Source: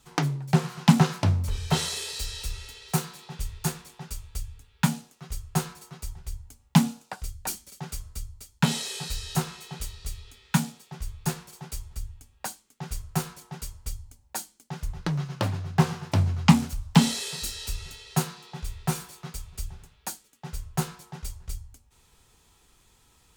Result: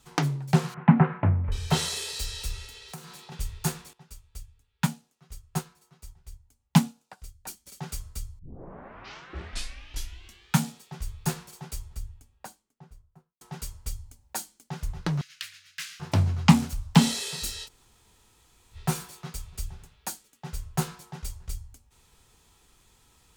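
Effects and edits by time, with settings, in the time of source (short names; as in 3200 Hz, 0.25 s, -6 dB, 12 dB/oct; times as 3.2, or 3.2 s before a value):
0.74–1.52 steep low-pass 2200 Hz
2.65–3.32 compressor 4:1, threshold -40 dBFS
3.93–7.66 upward expander, over -42 dBFS
8.39 tape start 2.24 s
11.52–13.41 studio fade out
15.21–16 inverse Chebyshev high-pass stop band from 920 Hz
17.66–18.75 room tone, crossfade 0.06 s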